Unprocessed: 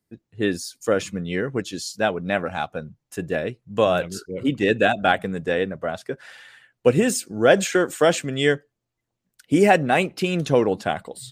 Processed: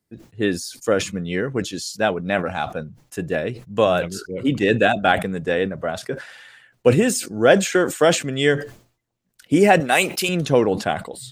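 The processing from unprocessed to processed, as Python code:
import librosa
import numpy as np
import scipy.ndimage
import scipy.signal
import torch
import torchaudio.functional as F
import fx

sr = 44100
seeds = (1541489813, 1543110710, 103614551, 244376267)

y = fx.riaa(x, sr, side='recording', at=(9.8, 10.29))
y = fx.sustainer(y, sr, db_per_s=130.0)
y = y * librosa.db_to_amplitude(1.5)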